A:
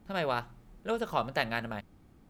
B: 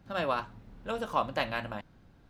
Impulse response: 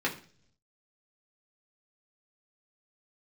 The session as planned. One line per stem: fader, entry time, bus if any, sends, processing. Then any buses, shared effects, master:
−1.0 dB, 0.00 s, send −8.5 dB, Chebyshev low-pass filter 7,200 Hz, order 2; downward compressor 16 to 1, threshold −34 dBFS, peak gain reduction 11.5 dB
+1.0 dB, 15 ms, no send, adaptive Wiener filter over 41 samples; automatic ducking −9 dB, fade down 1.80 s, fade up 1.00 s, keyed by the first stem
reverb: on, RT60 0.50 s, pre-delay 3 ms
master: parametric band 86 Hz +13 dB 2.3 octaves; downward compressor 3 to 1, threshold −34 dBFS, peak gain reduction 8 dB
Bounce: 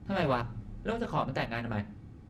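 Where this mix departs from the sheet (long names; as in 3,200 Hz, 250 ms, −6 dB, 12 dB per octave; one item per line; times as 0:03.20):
stem B: polarity flipped
master: missing downward compressor 3 to 1, threshold −34 dBFS, peak gain reduction 8 dB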